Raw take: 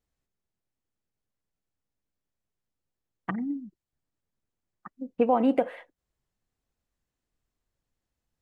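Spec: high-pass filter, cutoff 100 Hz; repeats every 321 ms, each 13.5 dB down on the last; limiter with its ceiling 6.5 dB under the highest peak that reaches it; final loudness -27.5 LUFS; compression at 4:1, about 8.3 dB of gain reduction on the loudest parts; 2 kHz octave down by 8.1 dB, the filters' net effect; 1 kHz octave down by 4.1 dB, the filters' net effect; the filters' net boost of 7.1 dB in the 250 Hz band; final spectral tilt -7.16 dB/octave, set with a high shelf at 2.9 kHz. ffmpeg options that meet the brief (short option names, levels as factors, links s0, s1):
-af "highpass=100,equalizer=f=250:t=o:g=8,equalizer=f=1000:t=o:g=-5.5,equalizer=f=2000:t=o:g=-5.5,highshelf=f=2900:g=-8,acompressor=threshold=0.0708:ratio=4,alimiter=limit=0.0944:level=0:latency=1,aecho=1:1:321|642:0.211|0.0444,volume=1.58"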